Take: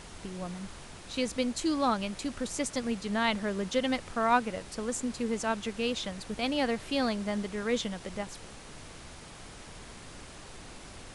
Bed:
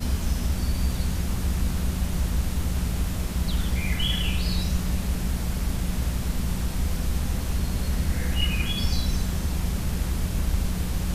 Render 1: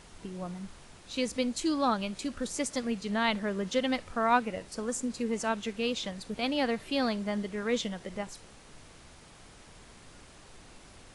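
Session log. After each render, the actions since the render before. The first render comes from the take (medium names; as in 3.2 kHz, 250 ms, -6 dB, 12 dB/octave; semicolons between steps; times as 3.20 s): noise print and reduce 6 dB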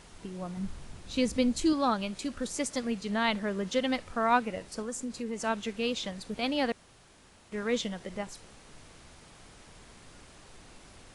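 0.57–1.73 s: bass shelf 230 Hz +11 dB; 4.82–5.42 s: compression 1.5:1, threshold -38 dBFS; 6.72–7.52 s: room tone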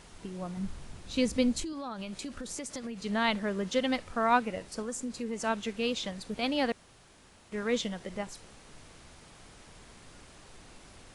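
1.63–2.99 s: compression 16:1, threshold -34 dBFS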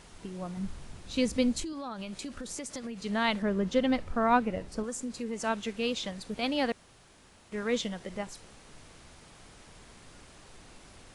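3.42–4.84 s: tilt EQ -2 dB/octave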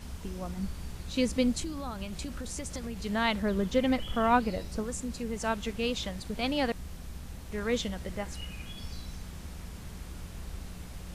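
add bed -16.5 dB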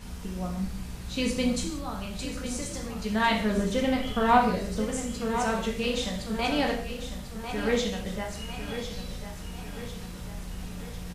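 feedback delay 1048 ms, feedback 50%, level -10 dB; gated-style reverb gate 210 ms falling, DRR -0.5 dB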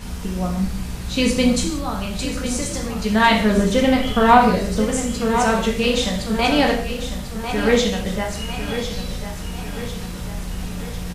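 trim +9.5 dB; peak limiter -1 dBFS, peak gain reduction 2.5 dB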